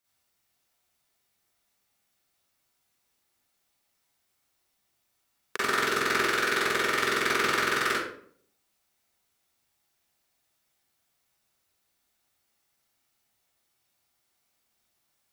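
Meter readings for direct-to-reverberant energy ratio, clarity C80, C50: −9.0 dB, 4.5 dB, −2.0 dB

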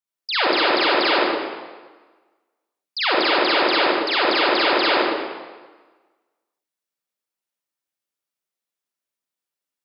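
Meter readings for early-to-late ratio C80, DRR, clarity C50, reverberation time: −0.5 dB, −7.5 dB, −4.0 dB, 1.4 s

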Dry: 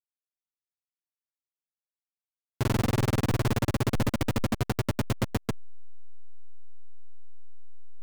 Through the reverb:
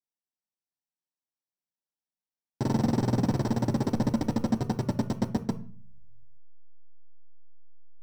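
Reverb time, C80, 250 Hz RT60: 0.45 s, 20.5 dB, 0.75 s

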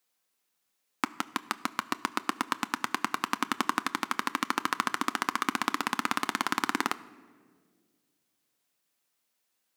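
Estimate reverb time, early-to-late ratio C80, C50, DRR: 1.8 s, 19.5 dB, 18.5 dB, 11.5 dB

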